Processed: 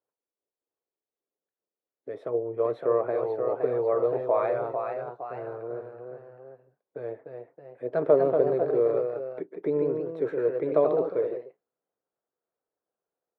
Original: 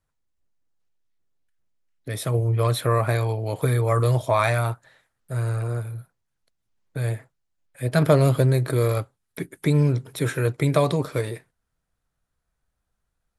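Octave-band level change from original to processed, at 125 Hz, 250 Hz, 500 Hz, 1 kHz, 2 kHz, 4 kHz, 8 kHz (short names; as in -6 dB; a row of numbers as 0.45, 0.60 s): -23.0 dB, -7.0 dB, +1.5 dB, -5.5 dB, -14.0 dB, under -25 dB, under -40 dB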